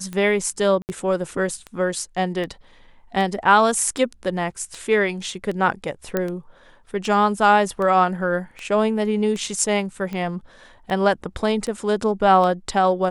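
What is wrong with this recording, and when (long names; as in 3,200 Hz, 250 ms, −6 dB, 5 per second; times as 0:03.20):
scratch tick 78 rpm −18 dBFS
0:00.82–0:00.89: drop-out 69 ms
0:06.17: click −9 dBFS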